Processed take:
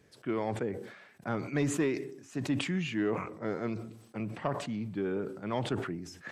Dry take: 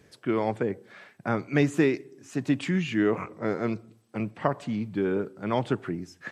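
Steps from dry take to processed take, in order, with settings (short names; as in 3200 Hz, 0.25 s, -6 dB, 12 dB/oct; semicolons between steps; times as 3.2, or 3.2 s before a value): soft clip -13 dBFS, distortion -21 dB; sustainer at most 72 dB/s; gain -6 dB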